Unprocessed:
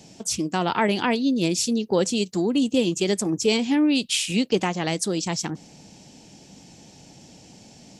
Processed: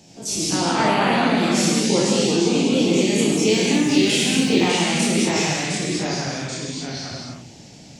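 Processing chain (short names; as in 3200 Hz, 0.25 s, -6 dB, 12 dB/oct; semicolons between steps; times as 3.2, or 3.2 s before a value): spectral dilation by 60 ms; 3.33–4.5 crackle 120/s -28 dBFS; non-linear reverb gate 0.25 s flat, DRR -3 dB; echoes that change speed 98 ms, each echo -2 st, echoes 2; gain -6 dB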